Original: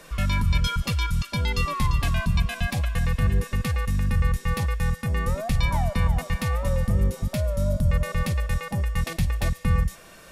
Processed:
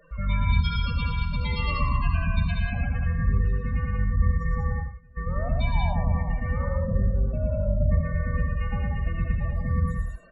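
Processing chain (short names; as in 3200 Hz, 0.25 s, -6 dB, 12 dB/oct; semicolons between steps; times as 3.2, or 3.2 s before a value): 0.67–1.07 high shelf 3800 Hz -3 dB; 4.69–5.17 flipped gate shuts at -31 dBFS, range -26 dB; loudest bins only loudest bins 16; loudspeakers at several distances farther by 38 m -2 dB, 65 m -3 dB; non-linear reverb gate 0.12 s rising, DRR 6 dB; gain -5 dB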